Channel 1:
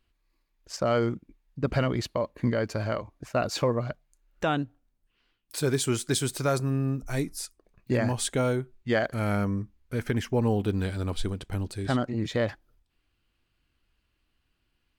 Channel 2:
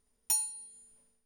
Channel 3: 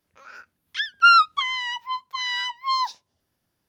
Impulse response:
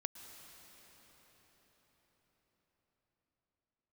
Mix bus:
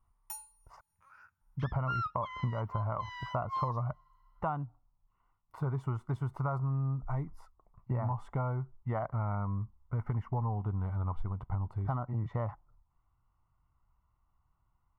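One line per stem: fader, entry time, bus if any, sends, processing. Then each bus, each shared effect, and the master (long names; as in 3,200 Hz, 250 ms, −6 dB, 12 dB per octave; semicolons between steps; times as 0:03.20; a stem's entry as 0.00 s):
+1.0 dB, 0.00 s, muted 0:00.81–0:01.41, no send, Savitzky-Golay smoothing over 65 samples; parametric band 340 Hz −4.5 dB 0.57 octaves
−9.0 dB, 0.00 s, send −21.5 dB, automatic ducking −17 dB, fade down 0.30 s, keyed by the first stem
−18.5 dB, 0.85 s, send −22.5 dB, bass and treble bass +12 dB, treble +3 dB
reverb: on, RT60 5.8 s, pre-delay 103 ms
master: octave-band graphic EQ 125/250/500/1,000/4,000/8,000 Hz +5/−9/−11/+12/−10/−8 dB; downward compressor 5 to 1, threshold −30 dBFS, peak gain reduction 10 dB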